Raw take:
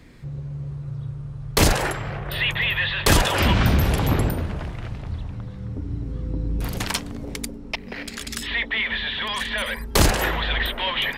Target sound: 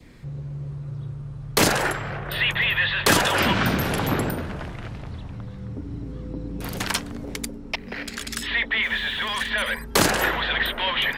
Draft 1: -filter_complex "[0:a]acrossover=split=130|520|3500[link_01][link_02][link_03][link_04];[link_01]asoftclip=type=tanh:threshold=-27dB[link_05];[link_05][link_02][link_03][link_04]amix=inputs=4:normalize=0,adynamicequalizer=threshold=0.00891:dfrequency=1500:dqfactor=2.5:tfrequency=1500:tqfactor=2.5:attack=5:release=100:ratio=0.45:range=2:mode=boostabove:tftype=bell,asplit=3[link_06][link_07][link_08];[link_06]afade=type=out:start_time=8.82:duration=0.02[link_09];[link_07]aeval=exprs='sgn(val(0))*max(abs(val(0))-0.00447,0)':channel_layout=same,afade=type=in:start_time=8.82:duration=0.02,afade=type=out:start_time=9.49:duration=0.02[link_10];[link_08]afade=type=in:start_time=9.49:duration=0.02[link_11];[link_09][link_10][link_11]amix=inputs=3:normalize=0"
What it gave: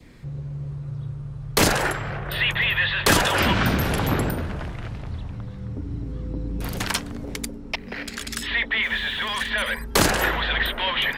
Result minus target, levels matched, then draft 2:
soft clipping: distortion −4 dB
-filter_complex "[0:a]acrossover=split=130|520|3500[link_01][link_02][link_03][link_04];[link_01]asoftclip=type=tanh:threshold=-35.5dB[link_05];[link_05][link_02][link_03][link_04]amix=inputs=4:normalize=0,adynamicequalizer=threshold=0.00891:dfrequency=1500:dqfactor=2.5:tfrequency=1500:tqfactor=2.5:attack=5:release=100:ratio=0.45:range=2:mode=boostabove:tftype=bell,asplit=3[link_06][link_07][link_08];[link_06]afade=type=out:start_time=8.82:duration=0.02[link_09];[link_07]aeval=exprs='sgn(val(0))*max(abs(val(0))-0.00447,0)':channel_layout=same,afade=type=in:start_time=8.82:duration=0.02,afade=type=out:start_time=9.49:duration=0.02[link_10];[link_08]afade=type=in:start_time=9.49:duration=0.02[link_11];[link_09][link_10][link_11]amix=inputs=3:normalize=0"

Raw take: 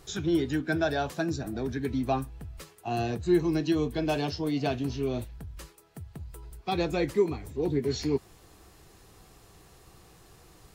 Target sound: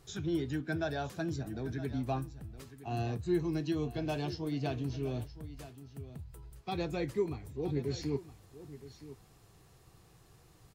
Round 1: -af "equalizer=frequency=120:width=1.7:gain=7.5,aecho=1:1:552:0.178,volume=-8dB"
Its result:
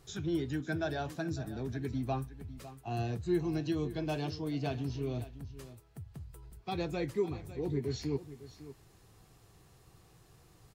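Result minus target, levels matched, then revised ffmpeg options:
echo 415 ms early
-af "equalizer=frequency=120:width=1.7:gain=7.5,aecho=1:1:967:0.178,volume=-8dB"

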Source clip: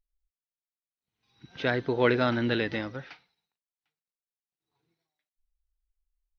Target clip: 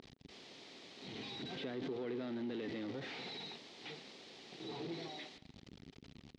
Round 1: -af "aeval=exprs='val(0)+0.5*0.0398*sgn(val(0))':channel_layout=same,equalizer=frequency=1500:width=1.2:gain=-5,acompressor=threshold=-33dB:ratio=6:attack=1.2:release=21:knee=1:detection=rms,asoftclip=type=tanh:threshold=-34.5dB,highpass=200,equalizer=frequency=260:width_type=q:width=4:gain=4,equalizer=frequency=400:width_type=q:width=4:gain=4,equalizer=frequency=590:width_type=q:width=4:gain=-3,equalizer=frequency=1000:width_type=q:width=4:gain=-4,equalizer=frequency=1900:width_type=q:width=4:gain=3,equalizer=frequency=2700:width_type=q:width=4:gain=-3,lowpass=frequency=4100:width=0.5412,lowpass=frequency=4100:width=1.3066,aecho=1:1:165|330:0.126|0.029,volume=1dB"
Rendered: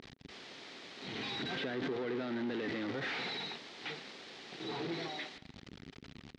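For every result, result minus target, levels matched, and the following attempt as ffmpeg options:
downward compressor: peak gain reduction −5 dB; 2,000 Hz band +4.5 dB
-af "aeval=exprs='val(0)+0.5*0.0398*sgn(val(0))':channel_layout=same,equalizer=frequency=1500:width=1.2:gain=-5,acompressor=threshold=-40.5dB:ratio=6:attack=1.2:release=21:knee=1:detection=rms,asoftclip=type=tanh:threshold=-34.5dB,highpass=200,equalizer=frequency=260:width_type=q:width=4:gain=4,equalizer=frequency=400:width_type=q:width=4:gain=4,equalizer=frequency=590:width_type=q:width=4:gain=-3,equalizer=frequency=1000:width_type=q:width=4:gain=-4,equalizer=frequency=1900:width_type=q:width=4:gain=3,equalizer=frequency=2700:width_type=q:width=4:gain=-3,lowpass=frequency=4100:width=0.5412,lowpass=frequency=4100:width=1.3066,aecho=1:1:165|330:0.126|0.029,volume=1dB"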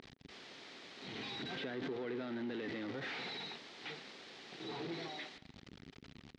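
2,000 Hz band +4.0 dB
-af "aeval=exprs='val(0)+0.5*0.0398*sgn(val(0))':channel_layout=same,equalizer=frequency=1500:width=1.2:gain=-13.5,acompressor=threshold=-40.5dB:ratio=6:attack=1.2:release=21:knee=1:detection=rms,asoftclip=type=tanh:threshold=-34.5dB,highpass=200,equalizer=frequency=260:width_type=q:width=4:gain=4,equalizer=frequency=400:width_type=q:width=4:gain=4,equalizer=frequency=590:width_type=q:width=4:gain=-3,equalizer=frequency=1000:width_type=q:width=4:gain=-4,equalizer=frequency=1900:width_type=q:width=4:gain=3,equalizer=frequency=2700:width_type=q:width=4:gain=-3,lowpass=frequency=4100:width=0.5412,lowpass=frequency=4100:width=1.3066,aecho=1:1:165|330:0.126|0.029,volume=1dB"

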